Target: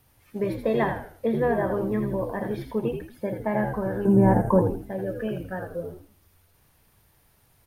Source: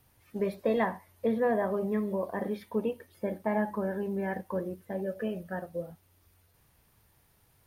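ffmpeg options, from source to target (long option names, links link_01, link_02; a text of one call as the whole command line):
ffmpeg -i in.wav -filter_complex "[0:a]asettb=1/sr,asplit=3[link_01][link_02][link_03];[link_01]atrim=end=4.054[link_04];[link_02]atrim=start=4.05:end=4.62,asetpts=PTS-STARTPTS,afade=type=in:duration=0.004:curve=qsin,afade=type=out:start_time=0.566:duration=0.004:curve=qsin,equalizer=frequency=125:width_type=o:width=1:gain=11,equalizer=frequency=250:width_type=o:width=1:gain=12,equalizer=frequency=500:width_type=o:width=1:gain=4,equalizer=frequency=1000:width_type=o:width=1:gain=12,equalizer=frequency=2000:width_type=o:width=1:gain=-5,equalizer=frequency=4000:width_type=o:width=1:gain=-10,equalizer=frequency=8000:width_type=o:width=1:gain=12[link_05];[link_03]atrim=start=4.616[link_06];[link_04][link_05]acrossfade=duration=0.004:curve1=hsin:curve2=qsin[link_07];[link_07][link_06]acrossfade=duration=0.004:curve1=qsin:curve2=hsin,asplit=2[link_08][link_09];[link_09]asplit=4[link_10][link_11][link_12][link_13];[link_10]adelay=81,afreqshift=-78,volume=-6dB[link_14];[link_11]adelay=162,afreqshift=-156,volume=-15.1dB[link_15];[link_12]adelay=243,afreqshift=-234,volume=-24.2dB[link_16];[link_13]adelay=324,afreqshift=-312,volume=-33.4dB[link_17];[link_14][link_15][link_16][link_17]amix=inputs=4:normalize=0[link_18];[link_08][link_18]amix=inputs=2:normalize=0,volume=3dB" out.wav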